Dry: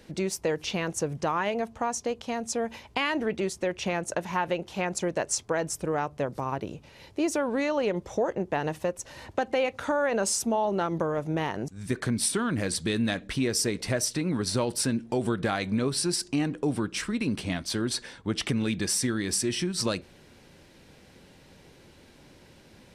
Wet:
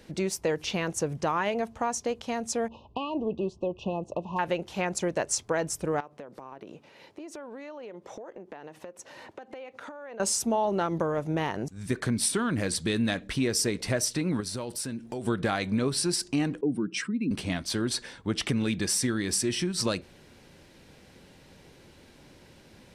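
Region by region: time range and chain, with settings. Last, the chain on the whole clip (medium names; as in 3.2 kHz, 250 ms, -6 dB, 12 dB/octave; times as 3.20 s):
2.68–4.39 s: tape spacing loss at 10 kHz 32 dB + hard clipper -19.5 dBFS + brick-wall FIR band-stop 1.2–2.5 kHz
6.00–10.20 s: high-pass 240 Hz + treble shelf 4.1 kHz -9 dB + compression 12:1, threshold -38 dBFS
14.40–15.27 s: treble shelf 8.2 kHz +7 dB + compression 2:1, threshold -37 dBFS
16.61–17.31 s: spectral contrast enhancement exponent 1.7 + high-pass 140 Hz 24 dB/octave
whole clip: none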